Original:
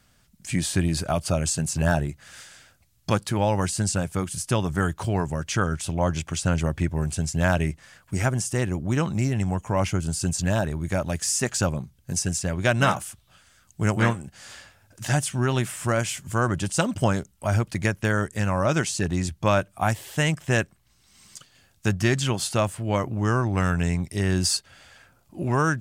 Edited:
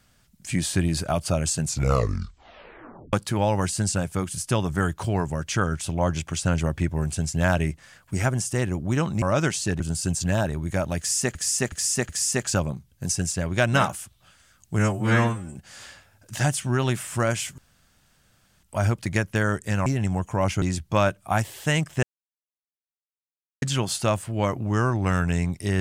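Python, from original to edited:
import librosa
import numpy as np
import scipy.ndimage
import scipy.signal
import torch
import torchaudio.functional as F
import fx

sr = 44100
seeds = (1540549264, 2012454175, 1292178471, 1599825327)

y = fx.edit(x, sr, fx.tape_stop(start_s=1.6, length_s=1.53),
    fx.swap(start_s=9.22, length_s=0.76, other_s=18.55, other_length_s=0.58),
    fx.repeat(start_s=11.16, length_s=0.37, count=4),
    fx.stretch_span(start_s=13.86, length_s=0.38, factor=2.0),
    fx.room_tone_fill(start_s=16.27, length_s=1.05),
    fx.silence(start_s=20.54, length_s=1.59), tone=tone)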